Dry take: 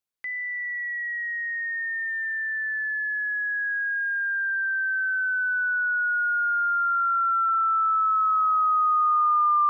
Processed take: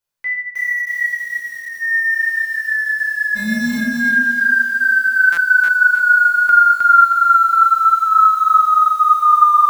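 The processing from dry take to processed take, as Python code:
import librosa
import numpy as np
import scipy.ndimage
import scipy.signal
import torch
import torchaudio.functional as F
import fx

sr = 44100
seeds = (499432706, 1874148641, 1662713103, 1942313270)

y = fx.peak_eq(x, sr, hz=1300.0, db=-9.5, octaves=2.7, at=(1.07, 1.81))
y = fx.echo_feedback(y, sr, ms=86, feedback_pct=18, wet_db=-12.0)
y = fx.sample_hold(y, sr, seeds[0], rate_hz=1900.0, jitter_pct=0, at=(3.35, 3.77), fade=0.02)
y = fx.bass_treble(y, sr, bass_db=14, treble_db=-13, at=(7.24, 8.02), fade=0.02)
y = fx.room_shoebox(y, sr, seeds[1], volume_m3=860.0, walls='furnished', distance_m=4.9)
y = fx.buffer_glitch(y, sr, at_s=(5.32, 6.44), block=256, repeats=8)
y = fx.echo_crushed(y, sr, ms=312, feedback_pct=35, bits=7, wet_db=-3)
y = y * librosa.db_to_amplitude(2.5)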